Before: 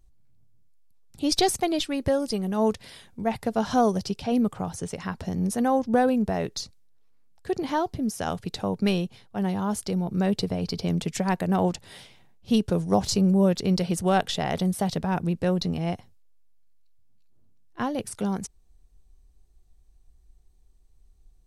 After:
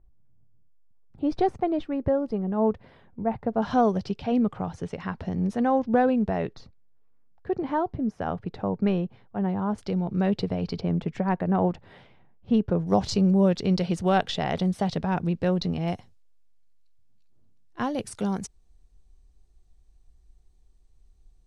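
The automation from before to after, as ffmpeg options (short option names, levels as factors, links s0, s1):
-af "asetnsamples=n=441:p=0,asendcmd='3.62 lowpass f 3000;6.53 lowpass f 1600;9.78 lowpass f 3200;10.81 lowpass f 1700;12.87 lowpass f 4600;15.88 lowpass f 8400',lowpass=1200"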